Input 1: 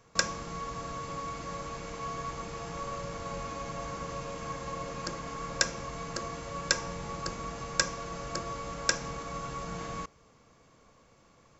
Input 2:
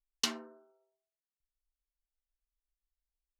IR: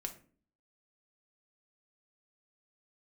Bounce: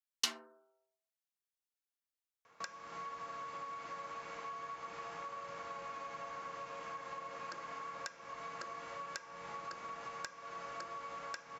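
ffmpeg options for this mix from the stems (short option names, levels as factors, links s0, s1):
-filter_complex "[0:a]bandpass=f=1500:t=q:w=0.76:csg=0,acompressor=threshold=0.00794:ratio=16,adelay=2450,volume=1.06[s0];[1:a]highpass=f=810:p=1,volume=0.841[s1];[s0][s1]amix=inputs=2:normalize=0"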